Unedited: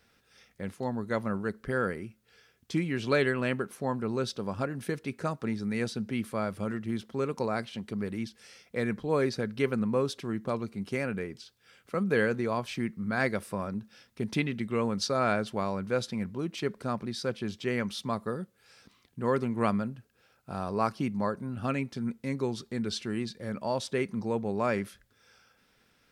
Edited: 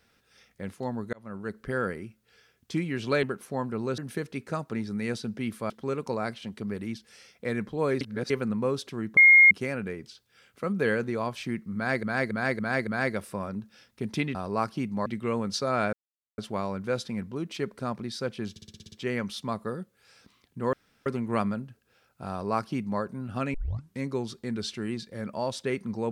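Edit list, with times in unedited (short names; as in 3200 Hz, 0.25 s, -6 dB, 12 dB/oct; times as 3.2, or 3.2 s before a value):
1.13–1.59 fade in
3.23–3.53 cut
4.28–4.7 cut
6.42–7.01 cut
9.32–9.61 reverse
10.48–10.82 bleep 2140 Hz -11.5 dBFS
13.06–13.34 loop, 5 plays
15.41 insert silence 0.45 s
17.53 stutter 0.06 s, 8 plays
19.34 insert room tone 0.33 s
20.58–21.29 copy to 14.54
21.82 tape start 0.45 s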